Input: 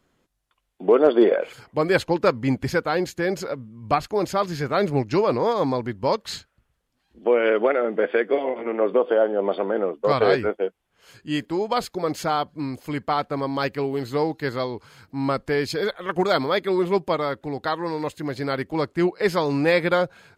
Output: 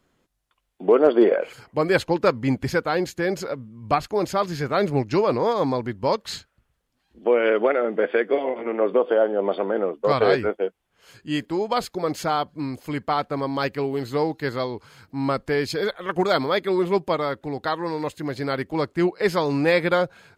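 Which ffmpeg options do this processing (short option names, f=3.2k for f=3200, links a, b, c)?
-filter_complex "[0:a]asettb=1/sr,asplit=3[a][b][c];[a]atrim=end=0.924[d];[b]atrim=start=0.92:end=1.93,asetpts=PTS-STARTPTS,afade=t=in:d=0.004:c=qsin,afade=t=out:st=1.006:d=0.004:c=qsin,bandreject=f=3.5k:w=12[e];[c]atrim=start=1.926[f];[d][e]acrossfade=d=0.004:c1=hsin:c2=qsin[g];[g][f]acrossfade=d=0.004:c1=qsin:c2=hsin"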